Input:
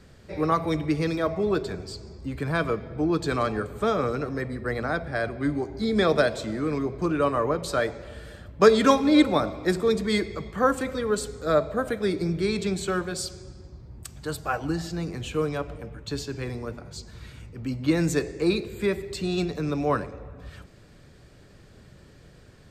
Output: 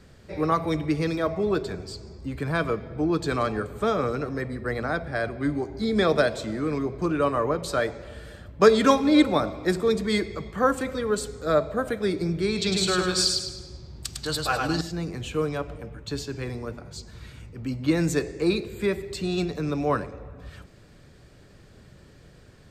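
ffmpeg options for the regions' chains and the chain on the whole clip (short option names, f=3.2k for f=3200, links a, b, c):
-filter_complex "[0:a]asettb=1/sr,asplit=3[a][b][c];[a]atrim=end=12.574[d];[b]atrim=start=12.57:end=14.81,asetpts=PTS-STARTPTS,afade=t=in:d=0.004:c=qsin,afade=t=out:st=2.236:d=0.004:c=qsin,equalizer=f=4.3k:t=o:w=1.5:g=12.5,aecho=1:1:103|206|309|412|515:0.668|0.247|0.0915|0.0339|0.0125,atrim=end_sample=98784[e];[c]atrim=start=14.806[f];[d][e]acrossfade=d=0.004:c1=hsin:c2=qsin[g];[g][f]acrossfade=d=0.004:c1=qsin:c2=hsin"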